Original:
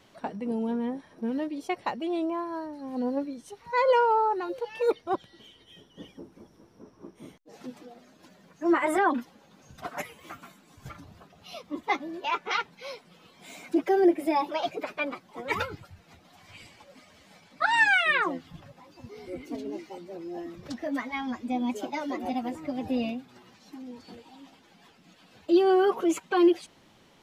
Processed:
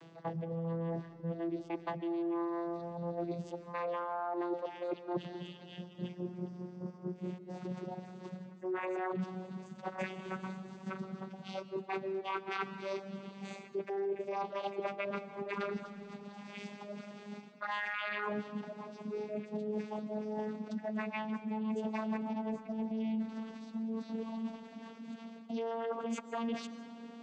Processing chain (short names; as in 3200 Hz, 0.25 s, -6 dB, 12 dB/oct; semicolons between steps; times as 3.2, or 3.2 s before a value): vocoder on a gliding note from E3, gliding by +6 st; dynamic EQ 2500 Hz, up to +4 dB, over -44 dBFS, Q 0.73; limiter -22 dBFS, peak gain reduction 11.5 dB; reverse; compressor 6:1, threshold -43 dBFS, peak gain reduction 16.5 dB; reverse; digital reverb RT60 2.1 s, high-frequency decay 0.45×, pre-delay 0.1 s, DRR 12.5 dB; gain +7.5 dB